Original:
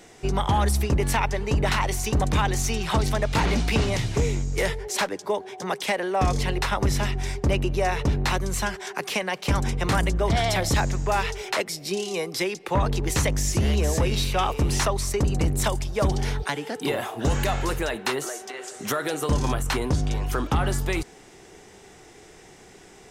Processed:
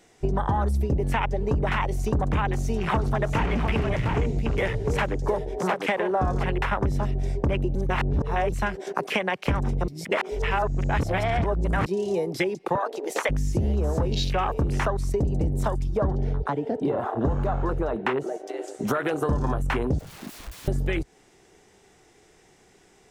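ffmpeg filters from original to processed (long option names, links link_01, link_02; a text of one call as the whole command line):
ffmpeg -i in.wav -filter_complex "[0:a]asettb=1/sr,asplit=3[link_01][link_02][link_03];[link_01]atrim=end=2.424[link_04];[link_02]atrim=start=2.42:end=6.5,asetpts=PTS-STARTPTS,afade=type=in:duration=0.004:curve=qsin,afade=type=out:start_time=4.076:duration=0.004:curve=qsin,aecho=1:1:98|333|706:0.141|0.106|0.562,atrim=end_sample=179928[link_05];[link_03]atrim=start=6.496[link_06];[link_04][link_05]acrossfade=duration=0.004:curve1=hsin:curve2=qsin[link_07];[link_07][link_06]acrossfade=duration=0.004:curve1=qsin:curve2=hsin,asplit=3[link_08][link_09][link_10];[link_08]afade=type=out:start_time=12.75:duration=0.02[link_11];[link_09]highpass=frequency=440:width=0.5412,highpass=frequency=440:width=1.3066,afade=type=in:start_time=12.75:duration=0.02,afade=type=out:start_time=13.29:duration=0.02[link_12];[link_10]afade=type=in:start_time=13.29:duration=0.02[link_13];[link_11][link_12][link_13]amix=inputs=3:normalize=0,asettb=1/sr,asplit=3[link_14][link_15][link_16];[link_14]atrim=end=15.974[link_17];[link_15]atrim=start=15.97:end=18.47,asetpts=PTS-STARTPTS,afade=type=in:duration=0.004:curve=qsin,afade=type=out:start_time=2.496:duration=0.004:curve=qsin,aemphasis=mode=reproduction:type=75kf[link_18];[link_16]atrim=start=18.466[link_19];[link_17][link_18]acrossfade=duration=0.004:curve1=hsin:curve2=qsin[link_20];[link_20][link_19]acrossfade=duration=0.004:curve1=qsin:curve2=hsin,asettb=1/sr,asplit=3[link_21][link_22][link_23];[link_21]atrim=end=19.994[link_24];[link_22]atrim=start=19.99:end=20.68,asetpts=PTS-STARTPTS,afade=type=in:duration=0.004:curve=qsin,afade=type=out:start_time=0.686:duration=0.004:curve=qsin,aeval=exprs='(mod(35.5*val(0)+1,2)-1)/35.5':channel_layout=same[link_25];[link_23]atrim=start=20.676[link_26];[link_24][link_25]acrossfade=duration=0.004:curve1=hsin:curve2=qsin[link_27];[link_27][link_26]acrossfade=duration=0.004:curve1=qsin:curve2=hsin,asplit=5[link_28][link_29][link_30][link_31][link_32];[link_28]atrim=end=7.752[link_33];[link_29]atrim=start=7.748:end=8.522,asetpts=PTS-STARTPTS,areverse[link_34];[link_30]atrim=start=8.518:end=9.882[link_35];[link_31]atrim=start=9.878:end=11.862,asetpts=PTS-STARTPTS,areverse[link_36];[link_32]atrim=start=11.858[link_37];[link_33][link_34]acrossfade=duration=0.004:curve1=hsin:curve2=hsin[link_38];[link_38][link_35]acrossfade=duration=0.004:curve1=hsin:curve2=hsin[link_39];[link_39][link_36]acrossfade=duration=0.004:curve1=hsin:curve2=hsin[link_40];[link_40][link_37]acrossfade=duration=0.004:curve1=hsin:curve2=hsin,afwtdn=0.0316,acompressor=threshold=-30dB:ratio=5,volume=8dB" out.wav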